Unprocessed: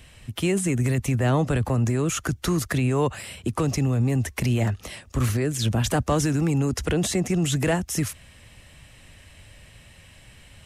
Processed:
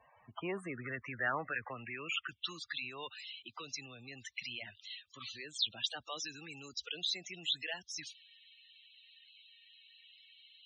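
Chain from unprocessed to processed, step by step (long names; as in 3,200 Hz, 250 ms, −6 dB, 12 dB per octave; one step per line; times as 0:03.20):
band-pass filter sweep 920 Hz → 3,800 Hz, 0:00.17–0:02.79
spectral peaks only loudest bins 32
level +1.5 dB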